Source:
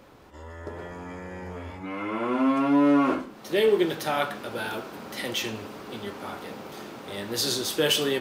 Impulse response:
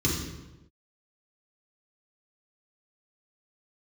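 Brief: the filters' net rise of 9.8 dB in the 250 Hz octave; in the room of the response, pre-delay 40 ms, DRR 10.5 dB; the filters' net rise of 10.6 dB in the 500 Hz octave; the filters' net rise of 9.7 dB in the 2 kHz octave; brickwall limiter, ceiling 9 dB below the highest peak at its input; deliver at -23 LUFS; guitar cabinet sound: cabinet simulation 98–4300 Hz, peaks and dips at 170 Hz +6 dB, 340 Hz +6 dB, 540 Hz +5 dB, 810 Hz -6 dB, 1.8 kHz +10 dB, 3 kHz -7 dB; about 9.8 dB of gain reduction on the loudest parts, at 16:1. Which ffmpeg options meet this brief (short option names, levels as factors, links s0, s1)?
-filter_complex "[0:a]equalizer=f=250:t=o:g=6,equalizer=f=500:t=o:g=7,equalizer=f=2000:t=o:g=5,acompressor=threshold=0.112:ratio=16,alimiter=limit=0.112:level=0:latency=1,asplit=2[s0][s1];[1:a]atrim=start_sample=2205,adelay=40[s2];[s1][s2]afir=irnorm=-1:irlink=0,volume=0.0944[s3];[s0][s3]amix=inputs=2:normalize=0,highpass=98,equalizer=f=170:t=q:w=4:g=6,equalizer=f=340:t=q:w=4:g=6,equalizer=f=540:t=q:w=4:g=5,equalizer=f=810:t=q:w=4:g=-6,equalizer=f=1800:t=q:w=4:g=10,equalizer=f=3000:t=q:w=4:g=-7,lowpass=f=4300:w=0.5412,lowpass=f=4300:w=1.3066,volume=1.06"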